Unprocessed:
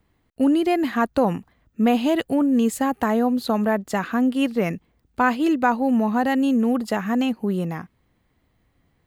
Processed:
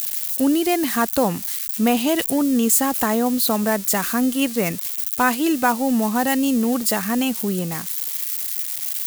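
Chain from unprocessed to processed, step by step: zero-crossing glitches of -25 dBFS; treble shelf 3.9 kHz +12 dB

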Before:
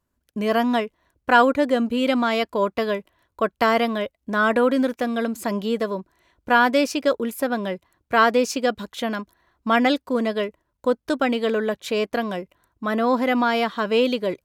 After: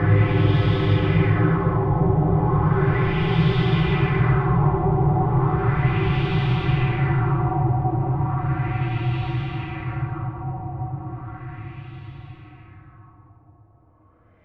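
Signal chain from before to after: high-pass 270 Hz 24 dB/octave; level held to a coarse grid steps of 22 dB; waveshaping leveller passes 3; formant shift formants -4 st; frequency shift -290 Hz; Paulstretch 30×, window 0.50 s, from 2.71 s; LFO low-pass sine 0.35 Hz 770–3500 Hz; on a send: reverberation RT60 1.8 s, pre-delay 20 ms, DRR 6 dB

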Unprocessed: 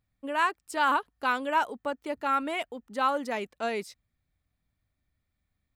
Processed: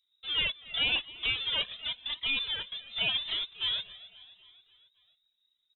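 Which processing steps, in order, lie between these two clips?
square wave that keeps the level; peaking EQ 2.5 kHz -5.5 dB 2.6 oct; frequency inversion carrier 3.8 kHz; band-stop 840 Hz, Q 12; feedback delay 268 ms, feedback 58%, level -19 dB; Shepard-style flanger rising 0.9 Hz

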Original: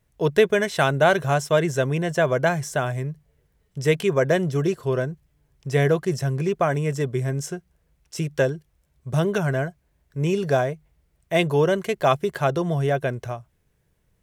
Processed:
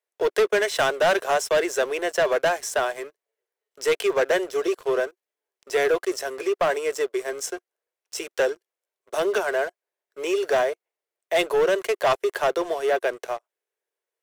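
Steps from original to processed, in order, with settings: steep high-pass 370 Hz 48 dB/octave; waveshaping leveller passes 3; trim -7.5 dB

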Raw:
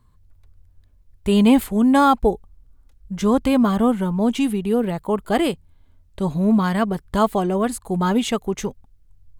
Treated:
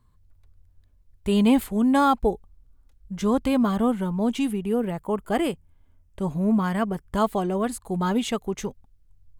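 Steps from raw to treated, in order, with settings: 4.51–7.18 s: peaking EQ 4 kHz -10.5 dB 0.34 oct; trim -4.5 dB

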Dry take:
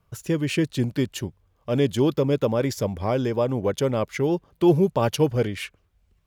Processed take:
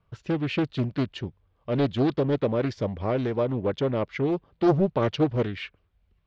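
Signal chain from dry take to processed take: low-pass 4.2 kHz 24 dB/octave; loudspeaker Doppler distortion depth 0.59 ms; trim -2.5 dB

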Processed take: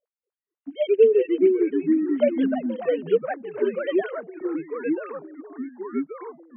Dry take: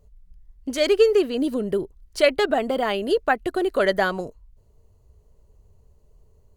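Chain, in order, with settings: formants replaced by sine waves; ever faster or slower copies 234 ms, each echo -3 st, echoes 3; trim -3 dB

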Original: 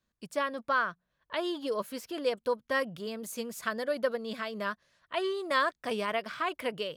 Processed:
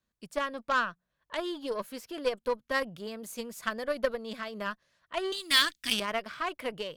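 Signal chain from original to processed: 5.32–6.00 s: FFT filter 310 Hz 0 dB, 480 Hz -22 dB, 3.1 kHz +14 dB; Chebyshev shaper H 3 -17 dB, 4 -24 dB, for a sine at -17 dBFS; trim +2.5 dB

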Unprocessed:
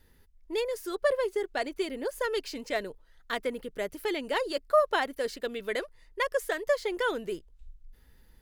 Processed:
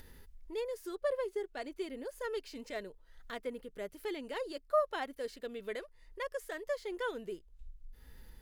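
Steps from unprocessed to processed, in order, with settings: upward compressor, threshold -32 dBFS; harmonic-percussive split percussive -6 dB; trim -6.5 dB

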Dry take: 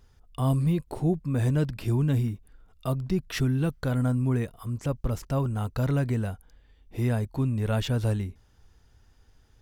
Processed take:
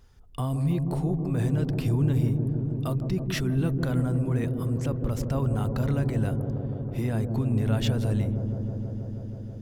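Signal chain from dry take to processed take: peak limiter -21.5 dBFS, peak gain reduction 8 dB; on a send: feedback echo behind a low-pass 161 ms, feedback 85%, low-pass 550 Hz, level -4.5 dB; on the sum: trim +1.5 dB

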